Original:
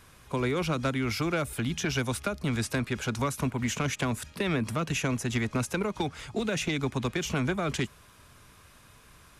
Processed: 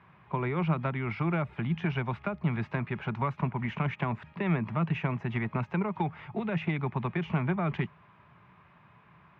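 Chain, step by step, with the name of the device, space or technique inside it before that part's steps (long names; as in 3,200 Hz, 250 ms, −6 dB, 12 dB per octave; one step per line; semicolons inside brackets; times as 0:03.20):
bass cabinet (loudspeaker in its box 87–2,300 Hz, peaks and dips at 90 Hz −7 dB, 170 Hz +7 dB, 270 Hz −9 dB, 490 Hz −9 dB, 900 Hz +5 dB, 1,500 Hz −5 dB)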